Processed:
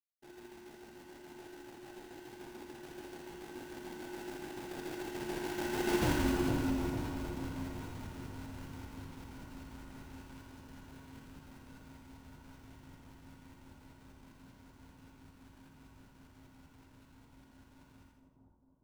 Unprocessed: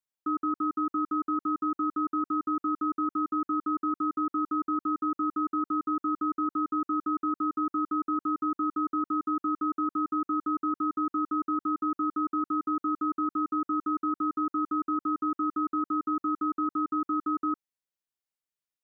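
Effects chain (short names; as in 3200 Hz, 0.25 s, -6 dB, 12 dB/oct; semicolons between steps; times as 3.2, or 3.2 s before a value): Doppler pass-by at 6.07, 51 m/s, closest 3.1 m; bell 370 Hz +4 dB 0.24 oct; in parallel at -2 dB: compressor, threshold -56 dBFS, peak gain reduction 27 dB; on the sum: sample-rate reducer 1200 Hz, jitter 20%; soft clip -34 dBFS, distortion -6 dB; split-band echo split 980 Hz, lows 0.455 s, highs 83 ms, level -4 dB; on a send at -2.5 dB: reverb RT60 0.60 s, pre-delay 38 ms; on the sum: gain +6 dB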